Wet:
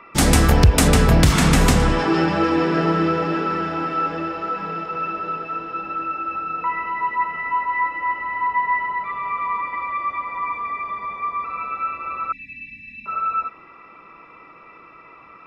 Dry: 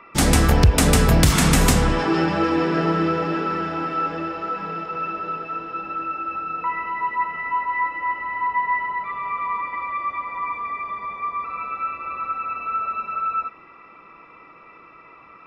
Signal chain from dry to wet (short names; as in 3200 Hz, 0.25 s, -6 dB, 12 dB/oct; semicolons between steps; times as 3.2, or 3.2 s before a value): 0.88–1.8 high shelf 7200 Hz -8 dB; 12.32–13.06 brick-wall FIR band-stop 300–1700 Hz; gain +1.5 dB